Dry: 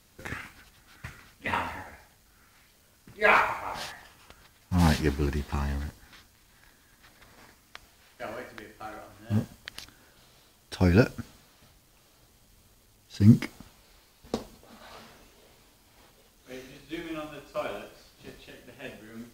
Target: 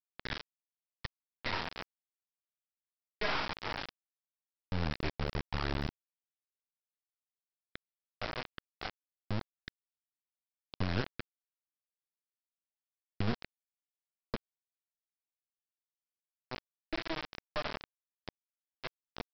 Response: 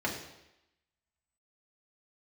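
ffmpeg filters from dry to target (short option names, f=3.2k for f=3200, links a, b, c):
-af "lowpass=f=2.3k:w=0.5412,lowpass=f=2.3k:w=1.3066,acompressor=threshold=-34dB:ratio=3,aresample=11025,acrusher=bits=3:dc=4:mix=0:aa=0.000001,aresample=44100,volume=2.5dB"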